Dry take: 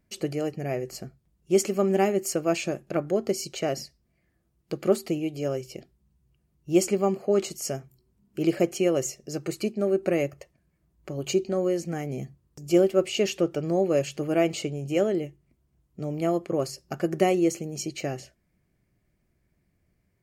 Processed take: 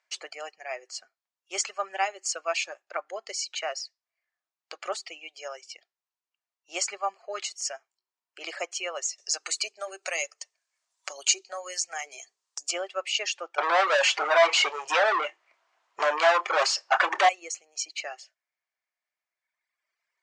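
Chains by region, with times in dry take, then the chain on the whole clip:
9.18–12.71 s: tone controls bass -7 dB, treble +14 dB + hum notches 50/100/150/200/250/300/350/400/450 Hz + three bands compressed up and down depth 40%
13.58–17.29 s: overdrive pedal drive 37 dB, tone 1.2 kHz, clips at -8 dBFS + doubling 27 ms -11 dB
whole clip: high-pass 810 Hz 24 dB/octave; reverb removal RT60 2 s; inverse Chebyshev low-pass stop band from 12 kHz, stop band 40 dB; trim +4.5 dB

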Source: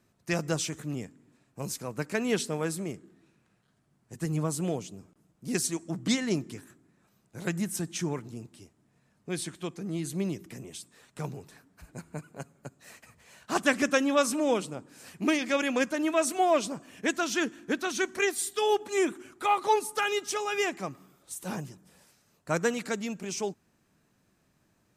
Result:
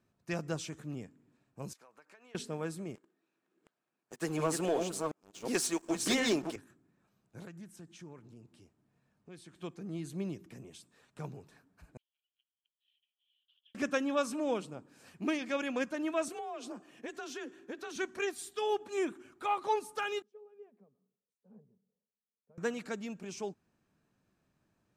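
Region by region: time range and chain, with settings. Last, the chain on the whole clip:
1.73–2.35 s: high-pass 950 Hz + tilt EQ -2.5 dB/octave + compression 16:1, threshold -47 dBFS
2.95–6.56 s: chunks repeated in reverse 361 ms, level -4 dB + high-pass 390 Hz + waveshaping leveller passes 3
7.45–9.56 s: compression 2:1, threshold -48 dBFS + loudspeaker Doppler distortion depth 0.11 ms
11.97–13.75 s: compression 5:1, threshold -37 dBFS + Butterworth band-pass 3.2 kHz, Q 7.6
16.28–17.96 s: compression 16:1, threshold -30 dBFS + frequency shift +44 Hz
20.22–22.58 s: compression 3:1, threshold -45 dBFS + two resonant band-passes 310 Hz, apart 1 oct + three bands expanded up and down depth 100%
whole clip: treble shelf 5.4 kHz -9 dB; band-stop 2 kHz, Q 17; trim -6.5 dB

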